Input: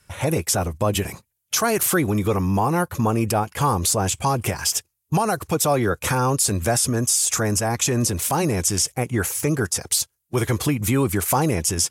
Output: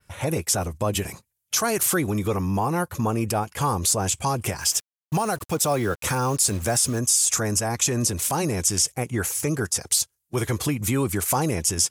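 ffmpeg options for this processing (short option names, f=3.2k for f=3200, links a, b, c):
-filter_complex "[0:a]adynamicequalizer=threshold=0.02:dfrequency=7200:dqfactor=0.75:tfrequency=7200:tqfactor=0.75:attack=5:release=100:ratio=0.375:range=2:mode=boostabove:tftype=bell,asettb=1/sr,asplit=3[a][b][c];[a]atrim=end=4.614[d];[b]atrim=start=4.61:end=6.99,asetpts=PTS-STARTPTS,afade=t=in:d=0.004:c=qsin,afade=t=out:st=2.376:d=0.004:c=qsin,acrusher=bits=5:mix=0:aa=0.5[e];[c]atrim=start=6.986[f];[d][e]acrossfade=d=0.004:c1=hsin:c2=qsin[g];[g][f]acrossfade=d=0.004:c1=qsin:c2=hsin,volume=-3.5dB"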